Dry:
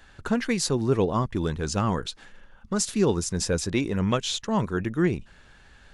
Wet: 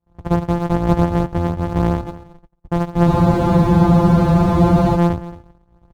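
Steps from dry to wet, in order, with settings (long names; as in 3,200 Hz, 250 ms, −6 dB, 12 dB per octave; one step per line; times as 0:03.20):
samples sorted by size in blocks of 256 samples
high-pass filter 47 Hz 12 dB per octave
parametric band 890 Hz +9 dB 1.3 octaves
on a send: single-tap delay 224 ms −16.5 dB
on the sum: noise gate −48 dBFS, range −33 dB
in parallel at −8 dB: decimation without filtering 17×
on the sum: spectral tilt −3.5 dB per octave
frozen spectrum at 0:03.08, 1.88 s
level −3.5 dB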